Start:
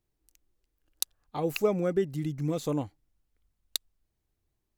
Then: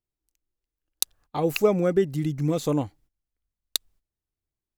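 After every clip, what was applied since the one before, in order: gate -60 dBFS, range -16 dB; gain +5.5 dB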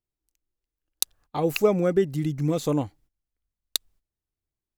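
nothing audible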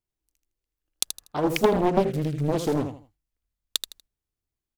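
feedback echo 80 ms, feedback 26%, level -8 dB; Doppler distortion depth 0.96 ms

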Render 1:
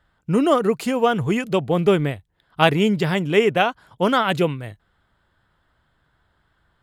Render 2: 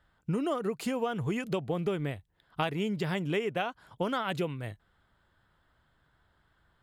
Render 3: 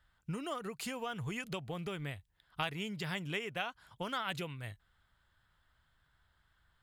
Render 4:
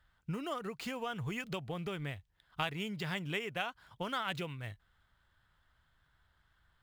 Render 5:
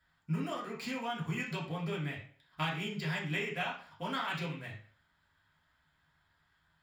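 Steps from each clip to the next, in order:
compressor 6:1, threshold -24 dBFS, peak gain reduction 13.5 dB; gain -4 dB
bell 350 Hz -12 dB 2.9 oct
median filter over 5 samples; gain +1 dB
reverb RT60 0.50 s, pre-delay 3 ms, DRR -5.5 dB; gain -4 dB

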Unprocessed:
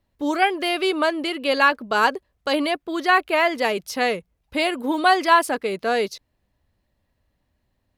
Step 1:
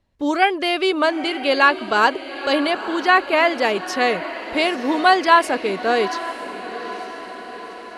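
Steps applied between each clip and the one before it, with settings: LPF 8100 Hz 12 dB/oct; on a send: diffused feedback echo 0.913 s, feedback 57%, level -12.5 dB; on the sum: gain +2.5 dB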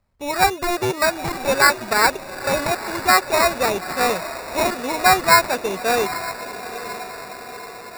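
bell 300 Hz -13 dB 0.38 oct; sample-and-hold 14×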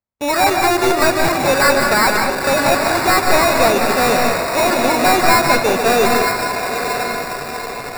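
HPF 150 Hz 6 dB/oct; sample leveller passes 5; on a send at -3 dB: reverb RT60 0.60 s, pre-delay 0.15 s; on the sum: gain -9 dB

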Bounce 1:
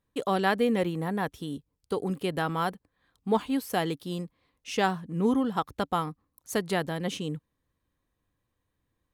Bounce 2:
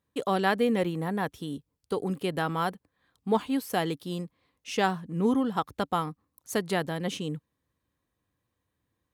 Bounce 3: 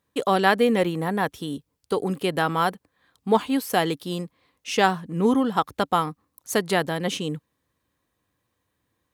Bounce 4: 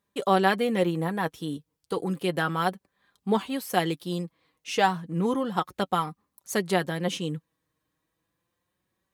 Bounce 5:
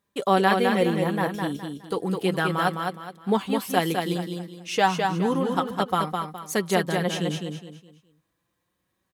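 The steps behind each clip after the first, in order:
HPF 64 Hz
low shelf 250 Hz -5.5 dB; gain +7 dB
flange 0.32 Hz, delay 4.9 ms, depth 1.6 ms, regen +34%
feedback echo 0.208 s, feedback 32%, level -4.5 dB; gain +1.5 dB

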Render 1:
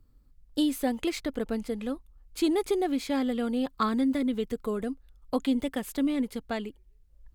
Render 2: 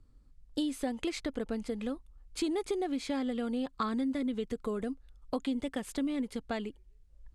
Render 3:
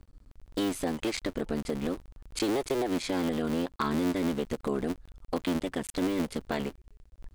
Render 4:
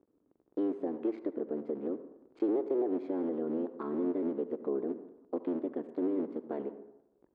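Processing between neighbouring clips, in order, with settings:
LPF 10000 Hz 24 dB/oct; compressor 2.5:1, threshold -32 dBFS, peak gain reduction 8 dB
cycle switcher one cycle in 3, muted; in parallel at +1.5 dB: limiter -29 dBFS, peak gain reduction 9.5 dB
ladder band-pass 410 Hz, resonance 45%; on a send at -12 dB: reverb RT60 0.90 s, pre-delay 63 ms; on the sum: gain +6.5 dB

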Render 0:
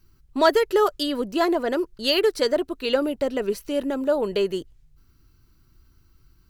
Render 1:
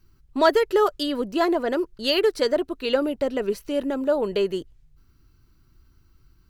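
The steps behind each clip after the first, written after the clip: high shelf 5200 Hz -4.5 dB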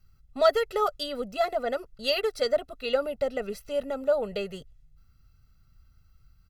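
comb 1.5 ms, depth 98%; gain -7 dB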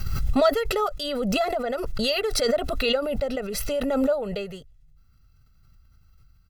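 backwards sustainer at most 23 dB/s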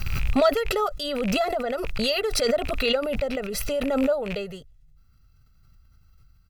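rattling part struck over -33 dBFS, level -22 dBFS

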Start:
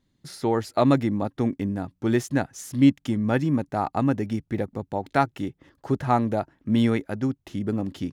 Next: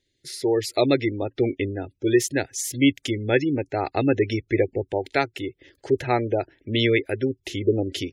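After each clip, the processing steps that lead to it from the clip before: EQ curve 110 Hz 0 dB, 200 Hz -14 dB, 380 Hz +9 dB, 1100 Hz -8 dB, 2100 Hz +11 dB; AGC gain up to 11 dB; spectral gate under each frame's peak -25 dB strong; gain -5.5 dB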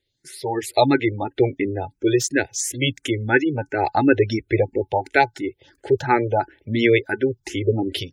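AGC gain up to 7 dB; small resonant body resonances 850/1500 Hz, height 16 dB, ringing for 80 ms; endless phaser +2.9 Hz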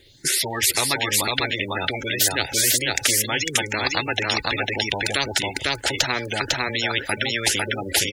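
on a send: echo 0.501 s -5.5 dB; on the sum: spectral compressor 10:1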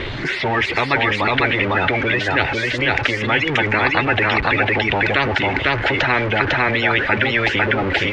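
zero-crossing step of -23 dBFS; in parallel at -8.5 dB: bit-crush 5-bit; on the sum: ladder low-pass 2900 Hz, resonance 25%; gain +7 dB

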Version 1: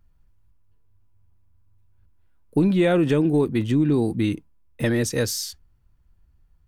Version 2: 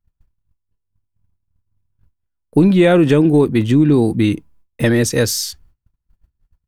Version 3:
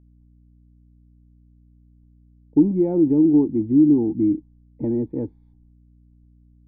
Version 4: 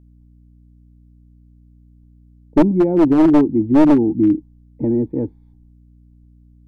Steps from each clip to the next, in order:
gate -54 dBFS, range -25 dB; gain +7.5 dB
vocal tract filter u; hum 60 Hz, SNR 31 dB
one-sided fold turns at -13.5 dBFS; gain +5 dB

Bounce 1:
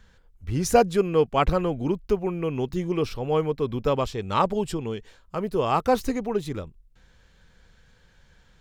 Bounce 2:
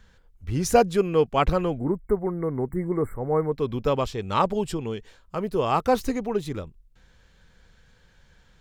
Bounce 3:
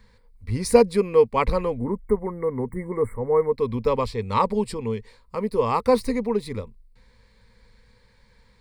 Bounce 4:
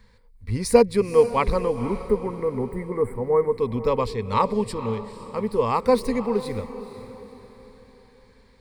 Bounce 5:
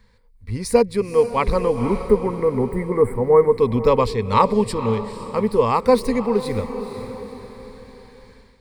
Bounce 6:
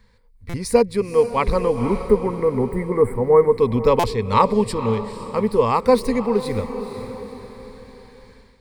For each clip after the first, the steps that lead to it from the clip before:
spectral delete 1.78–3.52, 2200–7400 Hz
ripple EQ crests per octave 0.93, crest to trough 12 dB; gain -1 dB
diffused feedback echo 0.493 s, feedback 42%, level -13 dB
AGC gain up to 9.5 dB; gain -1 dB
stuck buffer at 0.49/3.99, samples 256, times 7

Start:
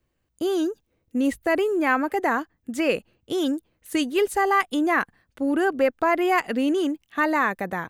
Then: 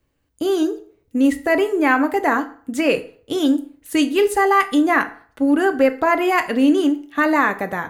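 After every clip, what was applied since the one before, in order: reverb RT60 0.50 s, pre-delay 4 ms, DRR 7 dB; gain +4 dB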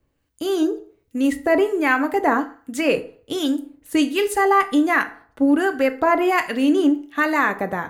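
harmonic tremolo 1.3 Hz, depth 50%, crossover 1300 Hz; gain +1 dB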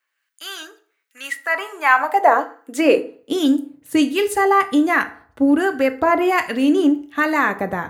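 high-pass sweep 1600 Hz -> 69 Hz, 1.34–4.52; gain +1 dB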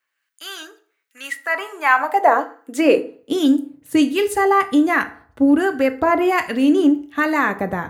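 low shelf 270 Hz +4.5 dB; gain -1 dB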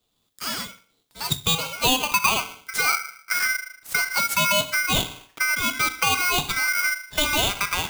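compressor 4:1, threshold -22 dBFS, peak gain reduction 11.5 dB; HPF 450 Hz 6 dB/oct; polarity switched at an audio rate 1800 Hz; gain +4.5 dB

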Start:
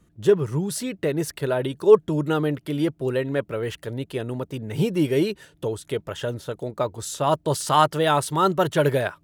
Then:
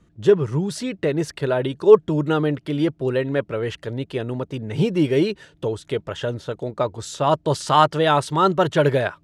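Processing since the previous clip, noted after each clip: LPF 6100 Hz 12 dB/oct; gain +2.5 dB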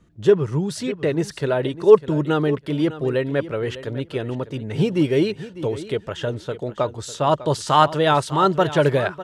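feedback echo 0.601 s, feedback 15%, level -15 dB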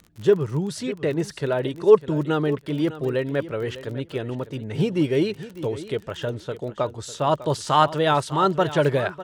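crackle 27/s -30 dBFS; gain -2.5 dB

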